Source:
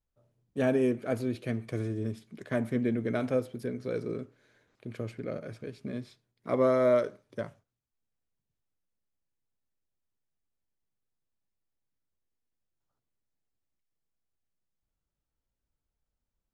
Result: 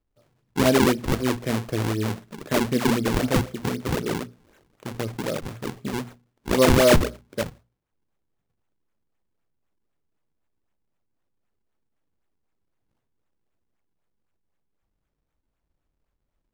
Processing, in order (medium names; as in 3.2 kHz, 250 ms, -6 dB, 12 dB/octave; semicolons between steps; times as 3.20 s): decimation with a swept rate 41×, swing 160% 3.9 Hz; hum notches 60/120/180/240 Hz; trim +8 dB